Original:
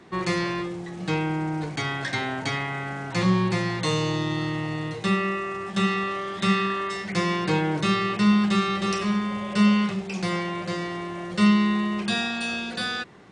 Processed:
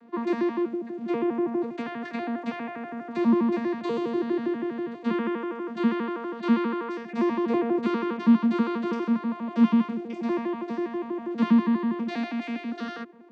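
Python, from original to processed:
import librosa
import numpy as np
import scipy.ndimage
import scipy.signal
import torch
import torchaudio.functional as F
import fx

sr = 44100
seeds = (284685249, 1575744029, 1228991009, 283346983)

y = fx.vocoder_arp(x, sr, chord='bare fifth', root=58, every_ms=81)
y = fx.high_shelf(y, sr, hz=3700.0, db=-11.0)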